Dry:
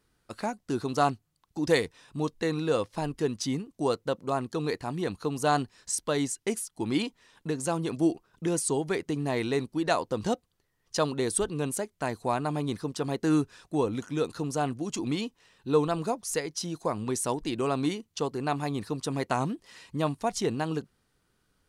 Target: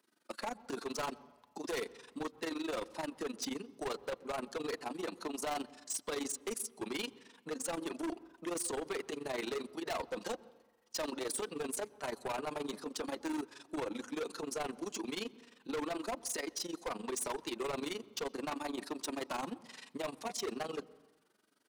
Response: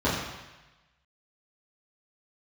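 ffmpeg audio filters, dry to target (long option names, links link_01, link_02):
-filter_complex "[0:a]highpass=frequency=200:width=0.5412,highpass=frequency=200:width=1.3066,acrossover=split=320|4400[link_01][link_02][link_03];[link_01]acompressor=threshold=-51dB:ratio=6[link_04];[link_04][link_02][link_03]amix=inputs=3:normalize=0,flanger=delay=3.1:depth=2:regen=-30:speed=0.37:shape=sinusoidal,tremolo=f=23:d=0.889,asoftclip=type=hard:threshold=-40dB,asplit=2[link_05][link_06];[1:a]atrim=start_sample=2205,asetrate=38367,aresample=44100,adelay=111[link_07];[link_06][link_07]afir=irnorm=-1:irlink=0,volume=-37dB[link_08];[link_05][link_08]amix=inputs=2:normalize=0,volume=6dB"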